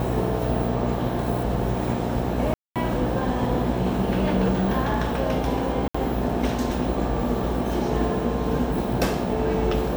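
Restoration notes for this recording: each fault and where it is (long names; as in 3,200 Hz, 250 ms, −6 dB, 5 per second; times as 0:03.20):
mains buzz 60 Hz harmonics 15 −28 dBFS
0:02.54–0:02.76: drop-out 217 ms
0:05.88–0:05.95: drop-out 65 ms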